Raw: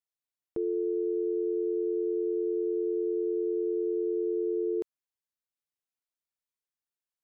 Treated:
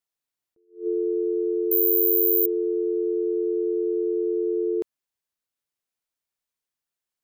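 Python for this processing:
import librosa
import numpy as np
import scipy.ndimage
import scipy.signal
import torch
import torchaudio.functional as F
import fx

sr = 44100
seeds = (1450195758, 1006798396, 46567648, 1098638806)

y = fx.resample_bad(x, sr, factor=3, down='filtered', up='zero_stuff', at=(1.71, 2.46))
y = fx.attack_slew(y, sr, db_per_s=200.0)
y = F.gain(torch.from_numpy(y), 5.0).numpy()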